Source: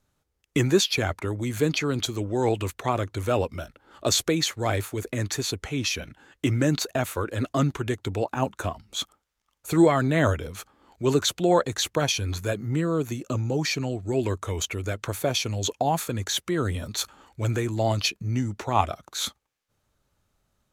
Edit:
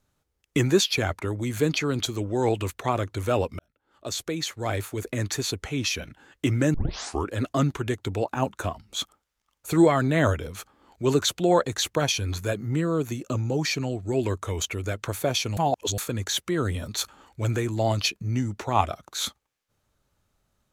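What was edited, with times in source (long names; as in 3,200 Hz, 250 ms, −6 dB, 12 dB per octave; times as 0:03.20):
0:03.59–0:05.09: fade in
0:06.74: tape start 0.55 s
0:15.57–0:15.98: reverse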